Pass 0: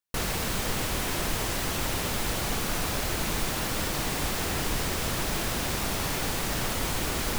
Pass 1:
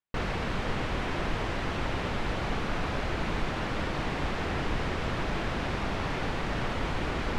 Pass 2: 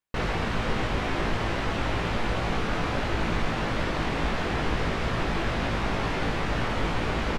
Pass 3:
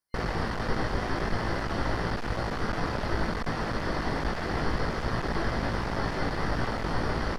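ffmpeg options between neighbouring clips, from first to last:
-af "lowpass=2600"
-filter_complex "[0:a]asplit=2[s0][s1];[s1]adelay=18,volume=0.596[s2];[s0][s2]amix=inputs=2:normalize=0,volume=1.33"
-filter_complex "[0:a]superequalizer=12b=0.282:13b=0.562:14b=2:15b=0.631:16b=2,aeval=exprs='clip(val(0),-1,0.0299)':c=same,acrossover=split=4500[s0][s1];[s1]acompressor=threshold=0.00282:ratio=4:attack=1:release=60[s2];[s0][s2]amix=inputs=2:normalize=0"

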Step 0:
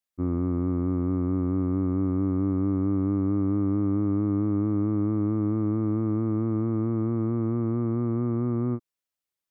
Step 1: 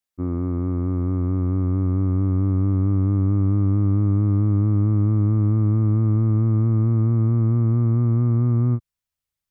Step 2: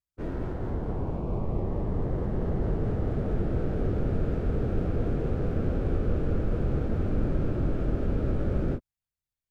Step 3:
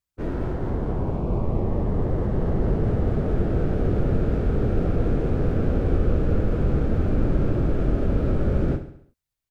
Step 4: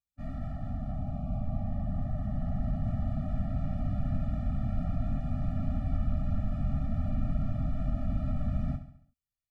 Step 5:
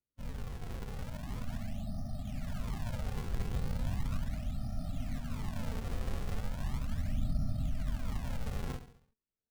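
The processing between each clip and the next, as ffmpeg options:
-af "asubboost=boost=6:cutoff=130,volume=1.19"
-af "aeval=exprs='abs(val(0))':c=same,afftfilt=real='hypot(re,im)*cos(2*PI*random(0))':imag='hypot(re,im)*sin(2*PI*random(1))':win_size=512:overlap=0.75"
-af "aecho=1:1:69|138|207|276|345:0.282|0.141|0.0705|0.0352|0.0176,volume=1.78"
-af "afftfilt=real='re*eq(mod(floor(b*sr/1024/280),2),0)':imag='im*eq(mod(floor(b*sr/1024/280),2),0)':win_size=1024:overlap=0.75,volume=0.398"
-af "acrusher=samples=41:mix=1:aa=0.000001:lfo=1:lforange=65.6:lforate=0.37,flanger=delay=0.2:depth=4.4:regen=75:speed=0.27:shape=sinusoidal,volume=0.794"

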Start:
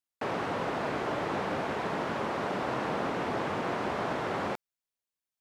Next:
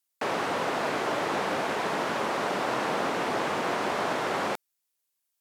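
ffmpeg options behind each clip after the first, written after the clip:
-af "highpass=f=280:p=1,aemphasis=mode=production:type=cd,volume=1.68"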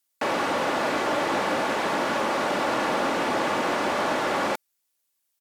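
-af "aecho=1:1:3.5:0.32,asoftclip=type=tanh:threshold=0.119,volume=1.58"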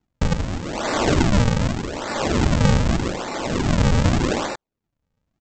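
-af "aresample=16000,acrusher=samples=26:mix=1:aa=0.000001:lfo=1:lforange=41.6:lforate=0.83,aresample=44100,tremolo=f=0.76:d=0.77,volume=2.82"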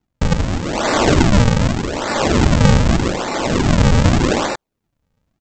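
-af "dynaudnorm=f=190:g=3:m=2,volume=1.12"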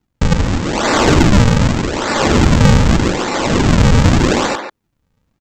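-filter_complex "[0:a]equalizer=f=650:w=2.7:g=-4,asplit=2[s0][s1];[s1]adelay=140,highpass=300,lowpass=3400,asoftclip=type=hard:threshold=0.266,volume=0.447[s2];[s0][s2]amix=inputs=2:normalize=0,acontrast=22,volume=0.891"

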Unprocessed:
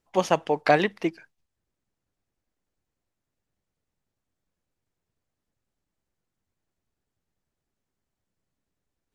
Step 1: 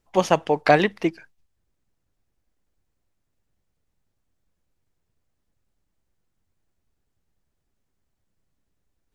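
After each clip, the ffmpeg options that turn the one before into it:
-af "lowshelf=f=80:g=9,volume=1.41"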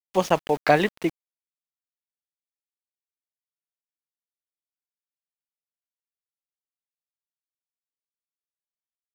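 -af "aeval=exprs='val(0)*gte(abs(val(0)),0.0251)':c=same,volume=0.794"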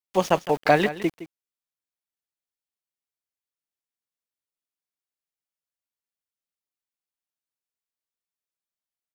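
-af "aecho=1:1:164:0.188"

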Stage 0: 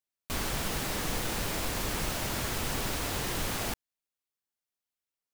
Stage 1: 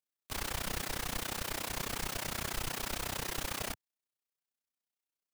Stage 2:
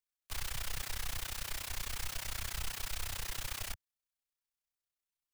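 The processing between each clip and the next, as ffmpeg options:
-filter_complex "[0:a]acrossover=split=100|640|3400[s0][s1][s2][s3];[s0]acrusher=bits=4:dc=4:mix=0:aa=0.000001[s4];[s1]alimiter=level_in=4.73:limit=0.0631:level=0:latency=1,volume=0.211[s5];[s4][s5][s2][s3]amix=inputs=4:normalize=0,tremolo=f=31:d=0.919"
-filter_complex "[0:a]equalizer=f=190:w=0.47:g=-12.5,acrossover=split=130|1600|3100[s0][s1][s2][s3];[s0]aeval=exprs='0.0299*sin(PI/2*2.51*val(0)/0.0299)':c=same[s4];[s1]alimiter=level_in=7.08:limit=0.0631:level=0:latency=1:release=64,volume=0.141[s5];[s4][s5][s2][s3]amix=inputs=4:normalize=0,volume=0.794"

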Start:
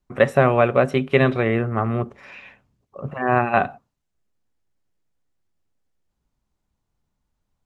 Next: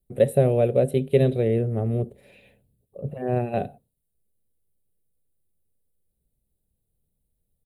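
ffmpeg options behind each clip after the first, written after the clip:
-af "firequalizer=gain_entry='entry(160,0);entry(290,-6);entry(470,2);entry(1100,-28);entry(1700,-19);entry(3900,-5);entry(5600,-20);entry(9300,10)':delay=0.05:min_phase=1"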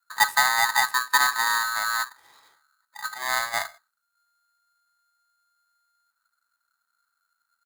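-af "aeval=exprs='val(0)*sgn(sin(2*PI*1400*n/s))':c=same,volume=0.794"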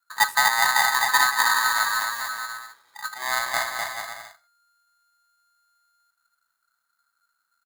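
-af "aecho=1:1:250|425|547.5|633.2|693.3:0.631|0.398|0.251|0.158|0.1"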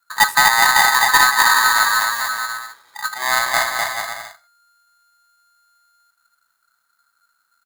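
-af "aeval=exprs='(tanh(3.98*val(0)+0.05)-tanh(0.05))/3.98':c=same,volume=2.51"

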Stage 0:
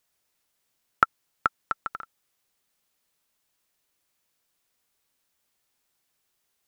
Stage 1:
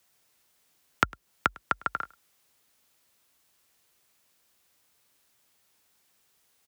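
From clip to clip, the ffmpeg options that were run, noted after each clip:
-filter_complex "[0:a]acrossover=split=480[s0][s1];[s1]acompressor=threshold=0.0316:ratio=5[s2];[s0][s2]amix=inputs=2:normalize=0,afreqshift=44,aecho=1:1:103:0.0631,volume=2.24"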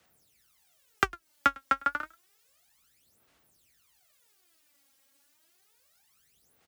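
-af "bandreject=f=1000:w=9.6,aphaser=in_gain=1:out_gain=1:delay=3.7:decay=0.77:speed=0.3:type=sinusoidal,volume=0.708"

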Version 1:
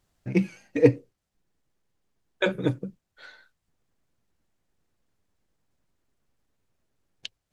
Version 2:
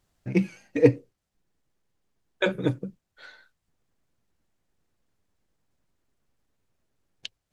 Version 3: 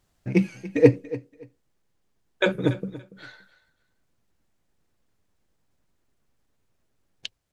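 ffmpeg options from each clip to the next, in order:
-af anull
-af "aecho=1:1:285|570:0.141|0.0283,volume=1.33"

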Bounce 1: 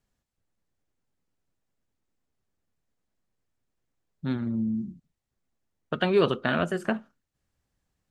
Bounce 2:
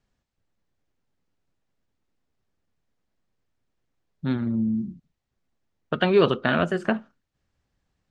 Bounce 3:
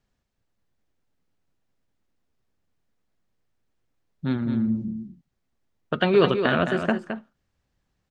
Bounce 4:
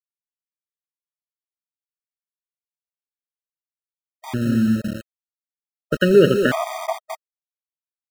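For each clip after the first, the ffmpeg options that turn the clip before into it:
-af "lowpass=5700,volume=1.5"
-af "aecho=1:1:215:0.398"
-af "highshelf=f=3600:g=-10,aeval=exprs='val(0)*gte(abs(val(0)),0.0355)':c=same,afftfilt=real='re*gt(sin(2*PI*0.69*pts/sr)*(1-2*mod(floor(b*sr/1024/630),2)),0)':imag='im*gt(sin(2*PI*0.69*pts/sr)*(1-2*mod(floor(b*sr/1024/630),2)),0)':win_size=1024:overlap=0.75,volume=2"

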